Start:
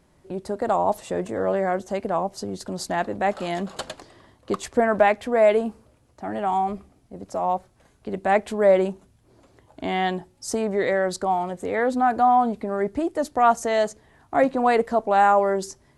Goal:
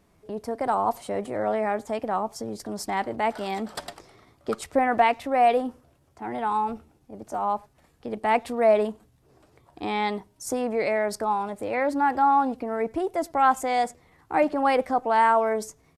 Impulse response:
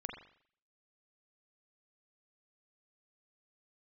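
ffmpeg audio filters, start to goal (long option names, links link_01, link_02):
-filter_complex "[0:a]asplit=2[link_01][link_02];[link_02]adelay=100,highpass=300,lowpass=3400,asoftclip=type=hard:threshold=-15.5dB,volume=-27dB[link_03];[link_01][link_03]amix=inputs=2:normalize=0,asetrate=49501,aresample=44100,atempo=0.890899,volume=-2.5dB"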